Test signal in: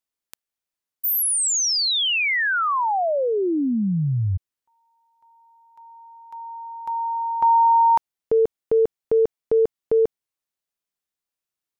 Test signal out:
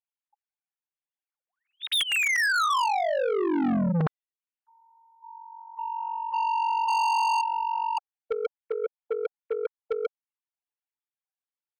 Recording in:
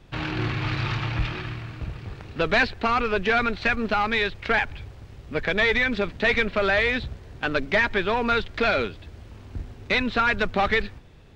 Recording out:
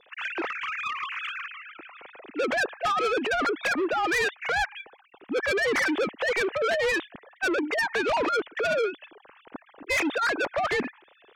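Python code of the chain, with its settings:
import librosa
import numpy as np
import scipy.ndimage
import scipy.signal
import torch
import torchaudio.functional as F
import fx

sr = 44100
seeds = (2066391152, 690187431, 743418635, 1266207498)

y = fx.sine_speech(x, sr)
y = fx.env_lowpass_down(y, sr, base_hz=1200.0, full_db=-15.5)
y = fx.over_compress(y, sr, threshold_db=-23.0, ratio=-0.5)
y = 10.0 ** (-28.0 / 20.0) * np.tanh(y / 10.0 ** (-28.0 / 20.0))
y = y * 10.0 ** (6.0 / 20.0)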